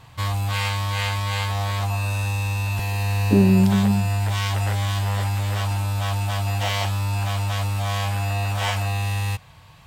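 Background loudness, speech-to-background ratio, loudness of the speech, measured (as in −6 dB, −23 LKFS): −24.0 LKFS, 4.5 dB, −19.5 LKFS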